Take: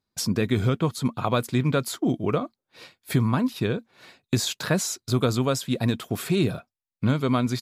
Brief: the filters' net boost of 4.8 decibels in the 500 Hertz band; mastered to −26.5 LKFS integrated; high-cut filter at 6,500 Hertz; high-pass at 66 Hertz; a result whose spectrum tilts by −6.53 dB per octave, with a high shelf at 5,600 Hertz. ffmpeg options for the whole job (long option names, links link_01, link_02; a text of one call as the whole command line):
ffmpeg -i in.wav -af "highpass=66,lowpass=6500,equalizer=frequency=500:width_type=o:gain=6,highshelf=frequency=5600:gain=-8.5,volume=-2.5dB" out.wav